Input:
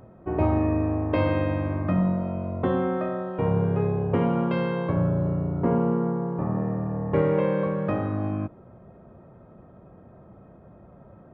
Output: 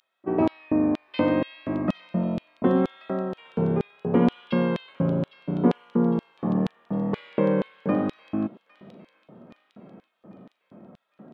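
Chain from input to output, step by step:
pitch vibrato 0.74 Hz 51 cents
auto-filter high-pass square 2.1 Hz 220–3,500 Hz
delay with a high-pass on its return 807 ms, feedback 53%, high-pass 2,700 Hz, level −12 dB

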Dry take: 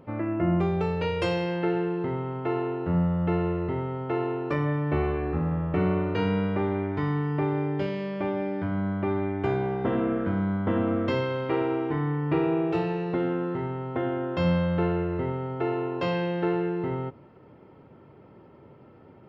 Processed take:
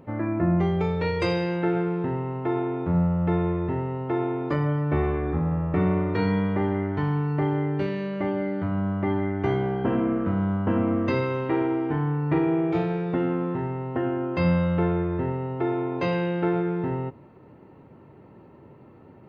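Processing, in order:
formants moved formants −2 semitones
level +2 dB

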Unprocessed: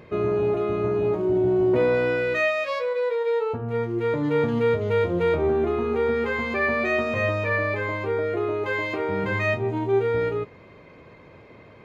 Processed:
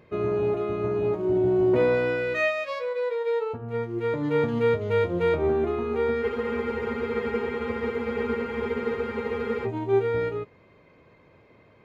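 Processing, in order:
frozen spectrum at 0:06.25, 3.39 s
expander for the loud parts 1.5 to 1, over −34 dBFS

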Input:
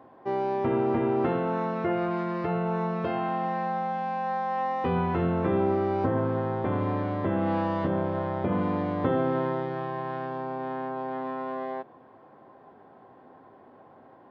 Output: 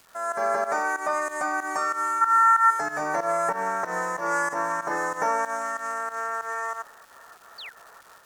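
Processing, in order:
bass and treble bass −13 dB, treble +13 dB
gain on a spectral selection 0:03.84–0:04.68, 480–1,100 Hz +10 dB
drawn EQ curve 140 Hz 0 dB, 980 Hz +5 dB, 1,900 Hz −23 dB, 3,900 Hz +13 dB
automatic gain control gain up to 9 dB
sound drawn into the spectrogram fall, 0:13.14–0:13.39, 780–2,800 Hz −31 dBFS
fake sidechain pumping 108 BPM, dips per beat 1, −15 dB, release 232 ms
surface crackle 310 per second −31 dBFS
wrong playback speed 45 rpm record played at 78 rpm
level −8 dB

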